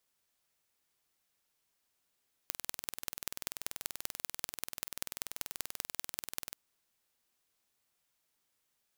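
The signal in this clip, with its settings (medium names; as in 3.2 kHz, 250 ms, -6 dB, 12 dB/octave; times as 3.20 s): pulse train 20.6 per s, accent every 4, -6.5 dBFS 4.05 s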